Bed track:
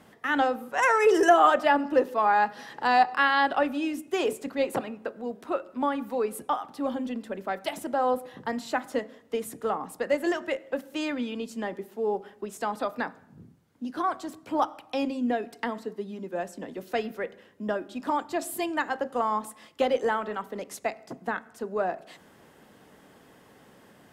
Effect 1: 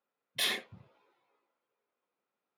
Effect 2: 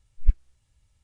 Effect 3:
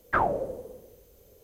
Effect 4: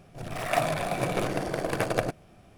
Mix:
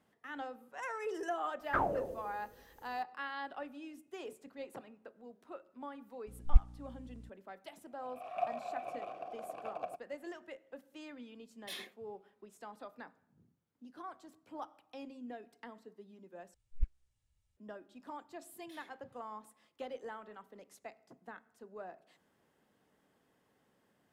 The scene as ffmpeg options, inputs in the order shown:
-filter_complex "[2:a]asplit=2[a][b];[1:a]asplit=2[c][d];[0:a]volume=-19dB[e];[3:a]aecho=1:1:216:0.0794[f];[a]aeval=exprs='val(0)+0.00501*(sin(2*PI*60*n/s)+sin(2*PI*2*60*n/s)/2+sin(2*PI*3*60*n/s)/3+sin(2*PI*4*60*n/s)/4+sin(2*PI*5*60*n/s)/5)':c=same[g];[4:a]asplit=3[h][i][j];[h]bandpass=f=730:t=q:w=8,volume=0dB[k];[i]bandpass=f=1.09k:t=q:w=8,volume=-6dB[l];[j]bandpass=f=2.44k:t=q:w=8,volume=-9dB[m];[k][l][m]amix=inputs=3:normalize=0[n];[d]acompressor=threshold=-42dB:ratio=8:attack=0.24:release=179:knee=1:detection=rms[o];[e]asplit=2[p][q];[p]atrim=end=16.544[r];[b]atrim=end=1.03,asetpts=PTS-STARTPTS,volume=-14dB[s];[q]atrim=start=17.566[t];[f]atrim=end=1.43,asetpts=PTS-STARTPTS,volume=-7.5dB,afade=t=in:d=0.004:c=hsin,afade=t=out:st=1.426:d=0.004:c=hsin,adelay=1600[u];[g]atrim=end=1.03,asetpts=PTS-STARTPTS,volume=-4.5dB,afade=t=in:d=0.004:c=hsin,afade=t=out:st=1.026:d=0.004:c=hsin,adelay=6270[v];[n]atrim=end=2.57,asetpts=PTS-STARTPTS,volume=-6.5dB,afade=t=in:d=0.004:c=hsin,afade=t=out:st=2.566:d=0.004:c=hsin,adelay=7850[w];[c]atrim=end=2.57,asetpts=PTS-STARTPTS,volume=-14dB,afade=t=in:d=0.004:c=hsin,afade=t=out:st=2.566:d=0.004:c=hsin,adelay=11290[x];[o]atrim=end=2.57,asetpts=PTS-STARTPTS,volume=-11dB,afade=t=in:d=0.004:c=hsin,afade=t=out:st=2.566:d=0.004:c=hsin,adelay=18310[y];[r][s]acrossfade=d=0.004:c1=hsin:c2=hsin[z];[z][t]acrossfade=d=0.004:c1=hsin:c2=hsin[aa];[aa][u][v][w][x][y]amix=inputs=6:normalize=0"

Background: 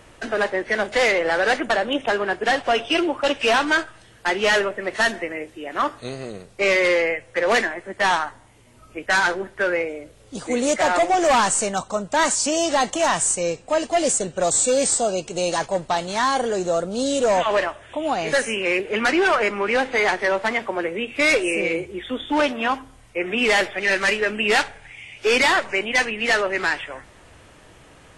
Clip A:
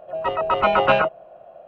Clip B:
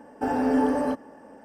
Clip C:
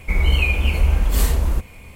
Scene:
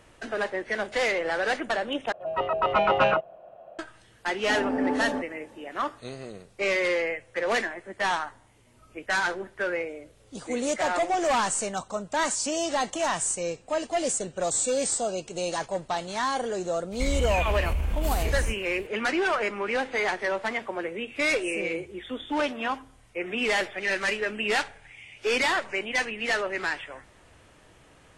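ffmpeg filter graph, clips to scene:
-filter_complex "[0:a]volume=-7dB[a];[1:a]acontrast=41[b];[2:a]lowpass=3.9k[c];[3:a]acompressor=threshold=-16dB:ratio=6:attack=3.2:release=140:knee=1:detection=peak[d];[a]asplit=2[e][f];[e]atrim=end=2.124[g];[b]atrim=end=1.67,asetpts=PTS-STARTPTS,volume=-9dB[h];[f]atrim=start=3.786[i];[c]atrim=end=1.44,asetpts=PTS-STARTPTS,volume=-4.5dB,afade=t=in:d=0.004:c=hsin,afade=t=out:st=1.436:d=0.004:c=hsin,adelay=4270[j];[d]atrim=end=1.95,asetpts=PTS-STARTPTS,volume=-6dB,afade=t=in:d=0.004:c=hsin,afade=t=out:st=1.946:d=0.004:c=hsin,adelay=16920[k];[g][h]acrossfade=d=0.004:c1=hsin:c2=hsin[l];[l][i]acrossfade=d=0.004:c1=hsin:c2=hsin[m];[m][j][k]amix=inputs=3:normalize=0"

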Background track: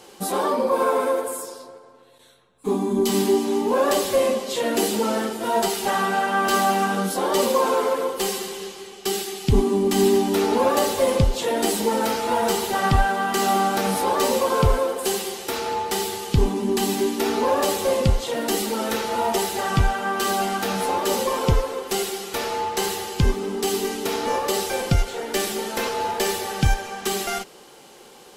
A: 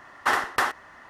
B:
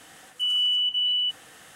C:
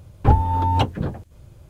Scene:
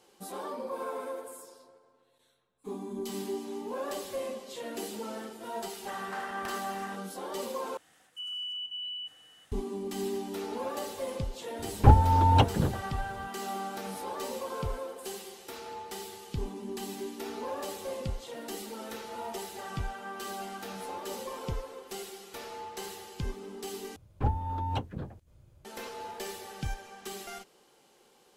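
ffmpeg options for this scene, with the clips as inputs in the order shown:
-filter_complex "[3:a]asplit=2[a][b];[0:a]volume=-16dB[c];[1:a]acompressor=threshold=-39dB:ratio=6:attack=3.2:release=140:knee=1:detection=peak[d];[2:a]aecho=1:1:376:0.1[e];[c]asplit=3[f][g][h];[f]atrim=end=7.774[i];[e]atrim=end=1.75,asetpts=PTS-STARTPTS,volume=-14dB[j];[g]atrim=start=9.516:end=23.964[k];[b]atrim=end=1.69,asetpts=PTS-STARTPTS,volume=-13dB[l];[h]atrim=start=25.646[m];[d]atrim=end=1.09,asetpts=PTS-STARTPTS,volume=-1dB,afade=t=in:d=0.004:c=hsin,afade=t=out:st=1.086:d=0.004:c=hsin,adelay=5870[n];[a]atrim=end=1.69,asetpts=PTS-STARTPTS,volume=-2dB,afade=t=in:d=0.004:c=hsin,afade=t=out:st=1.686:d=0.004:c=hsin,adelay=11590[o];[i][j]acrossfade=d=0.004:c1=hsin:c2=hsin[p];[p][k]acrossfade=d=0.004:c1=hsin:c2=hsin[q];[q][l]acrossfade=d=0.004:c1=hsin:c2=hsin[r];[r][m]acrossfade=d=0.004:c1=hsin:c2=hsin[s];[s][n][o]amix=inputs=3:normalize=0"

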